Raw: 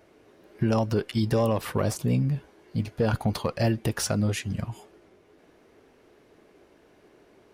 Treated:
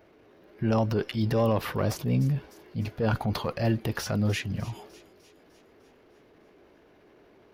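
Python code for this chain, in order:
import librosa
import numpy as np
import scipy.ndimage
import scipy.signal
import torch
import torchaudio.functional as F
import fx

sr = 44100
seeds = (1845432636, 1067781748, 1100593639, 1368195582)

y = fx.transient(x, sr, attack_db=-6, sustain_db=4)
y = fx.peak_eq(y, sr, hz=8500.0, db=-13.5, octaves=0.84)
y = fx.echo_wet_highpass(y, sr, ms=301, feedback_pct=58, hz=3700.0, wet_db=-14)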